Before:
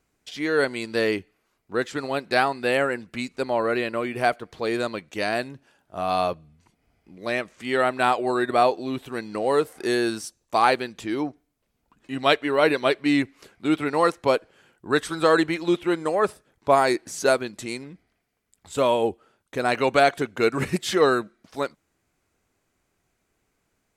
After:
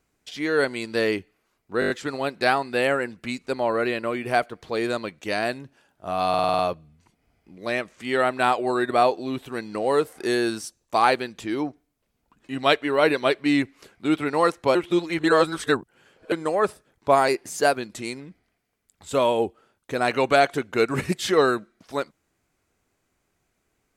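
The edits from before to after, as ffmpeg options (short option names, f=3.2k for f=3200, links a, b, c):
-filter_complex "[0:a]asplit=16[a][b][c][d][e][f][g][h][i][j][k][l][m][n][o][p];[a]atrim=end=1.822[q];[b]atrim=start=1.798:end=1.822[r];[c]atrim=start=1.798:end=1.822[s];[d]atrim=start=1.798:end=1.822[t];[e]atrim=start=1.798:end=1.822[u];[f]atrim=start=1.798:end=6.242[v];[g]atrim=start=6.188:end=6.242[w];[h]atrim=start=6.188:end=6.242[x];[i]atrim=start=6.188:end=6.242[y];[j]atrim=start=6.188:end=6.242[z];[k]atrim=start=6.188:end=6.242[aa];[l]atrim=start=6.188:end=14.352[ab];[m]atrim=start=14.348:end=15.922,asetpts=PTS-STARTPTS,areverse[ac];[n]atrim=start=15.918:end=16.884[ad];[o]atrim=start=16.88:end=17.39,asetpts=PTS-STARTPTS,asetrate=47628,aresample=44100[ae];[p]atrim=start=17.386[af];[q][r]acrossfade=d=0.004:c1=hsin:c2=hsin[ag];[ag][s]acrossfade=d=0.004:c1=hsin:c2=hsin[ah];[ah][t]acrossfade=d=0.004:c1=hsin:c2=hsin[ai];[ai][u]acrossfade=d=0.004:c1=hsin:c2=hsin[aj];[aj][v]acrossfade=d=0.004:c1=hsin:c2=hsin[ak];[ak][w]acrossfade=d=0.004:c1=hsin:c2=hsin[al];[al][x]acrossfade=d=0.004:c1=hsin:c2=hsin[am];[am][y]acrossfade=d=0.004:c1=hsin:c2=hsin[an];[an][z]acrossfade=d=0.004:c1=hsin:c2=hsin[ao];[ao][aa]acrossfade=d=0.004:c1=hsin:c2=hsin[ap];[ap][ab]acrossfade=d=0.004:c1=hsin:c2=hsin[aq];[aq][ac]acrossfade=d=0.004:c1=hsin:c2=hsin[ar];[ar][ad]acrossfade=d=0.004:c1=hsin:c2=hsin[as];[as][ae]acrossfade=d=0.004:c1=hsin:c2=hsin[at];[at][af]acrossfade=d=0.004:c1=hsin:c2=hsin"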